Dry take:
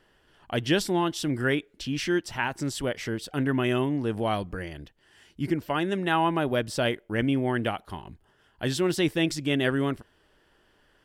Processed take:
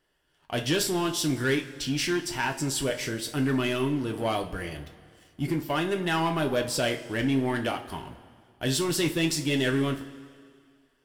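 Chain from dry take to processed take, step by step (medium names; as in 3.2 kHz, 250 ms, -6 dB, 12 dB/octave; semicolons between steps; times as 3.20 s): treble shelf 5.6 kHz +9 dB; waveshaping leveller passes 2; two-slope reverb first 0.27 s, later 2.1 s, from -18 dB, DRR 2.5 dB; trim -8 dB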